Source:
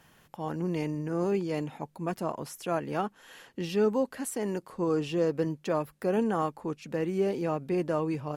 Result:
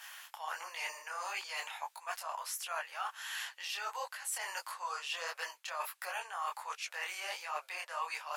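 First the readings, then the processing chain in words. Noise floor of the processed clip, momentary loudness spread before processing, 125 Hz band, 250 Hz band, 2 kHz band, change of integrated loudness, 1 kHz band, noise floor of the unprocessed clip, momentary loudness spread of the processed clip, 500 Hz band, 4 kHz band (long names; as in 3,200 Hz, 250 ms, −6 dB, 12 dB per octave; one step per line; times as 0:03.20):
−65 dBFS, 9 LU, below −40 dB, below −40 dB, +4.0 dB, −9.0 dB, −3.0 dB, −63 dBFS, 4 LU, −20.5 dB, +5.0 dB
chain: Bessel high-pass filter 1,400 Hz, order 8
reversed playback
downward compressor 6 to 1, threshold −51 dBFS, peak gain reduction 17 dB
reversed playback
micro pitch shift up and down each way 51 cents
level +18 dB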